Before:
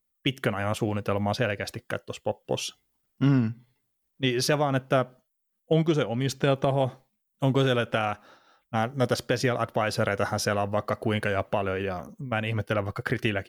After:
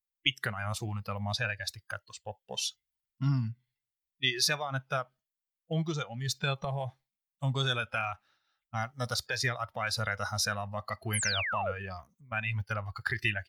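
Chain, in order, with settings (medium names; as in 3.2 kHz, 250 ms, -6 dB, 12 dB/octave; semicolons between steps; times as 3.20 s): spectral noise reduction 15 dB; graphic EQ 250/500/1000/2000/4000 Hz -10/-11/-5/+4/+4 dB; painted sound fall, 11.13–11.72 s, 460–12000 Hz -32 dBFS; trim -1 dB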